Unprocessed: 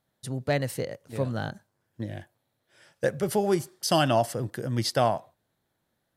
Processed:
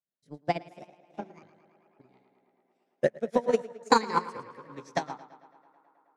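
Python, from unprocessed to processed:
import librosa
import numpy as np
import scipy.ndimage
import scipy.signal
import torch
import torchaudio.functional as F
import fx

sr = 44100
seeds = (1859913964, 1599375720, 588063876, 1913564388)

p1 = fx.pitch_ramps(x, sr, semitones=8.0, every_ms=1429)
p2 = scipy.signal.sosfilt(scipy.signal.butter(4, 9400.0, 'lowpass', fs=sr, output='sos'), p1)
p3 = fx.rotary(p2, sr, hz=5.0)
p4 = scipy.signal.sosfilt(scipy.signal.butter(2, 190.0, 'highpass', fs=sr, output='sos'), p3)
p5 = fx.high_shelf(p4, sr, hz=6900.0, db=-7.5)
p6 = p5 + fx.echo_tape(p5, sr, ms=109, feedback_pct=89, wet_db=-5, lp_hz=4700.0, drive_db=12.0, wow_cents=28, dry=0)
p7 = fx.transient(p6, sr, attack_db=7, sustain_db=1)
p8 = 10.0 ** (-17.0 / 20.0) * np.tanh(p7 / 10.0 ** (-17.0 / 20.0))
p9 = p7 + (p8 * librosa.db_to_amplitude(-9.0))
y = fx.upward_expand(p9, sr, threshold_db=-33.0, expansion=2.5)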